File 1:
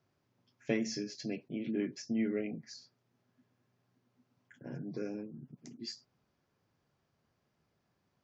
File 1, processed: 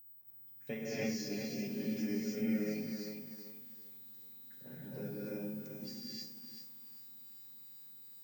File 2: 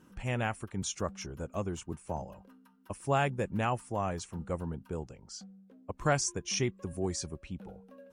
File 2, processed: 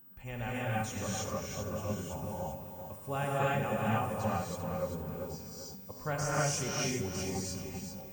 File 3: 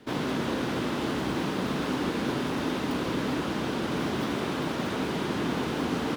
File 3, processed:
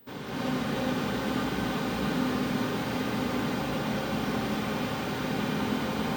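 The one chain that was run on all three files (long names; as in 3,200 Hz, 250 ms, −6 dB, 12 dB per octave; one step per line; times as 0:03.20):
notch comb filter 330 Hz
steady tone 16,000 Hz −45 dBFS
floating-point word with a short mantissa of 6 bits
reverb whose tail is shaped and stops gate 350 ms rising, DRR −7.5 dB
feedback echo at a low word length 391 ms, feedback 35%, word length 8 bits, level −7 dB
level −8 dB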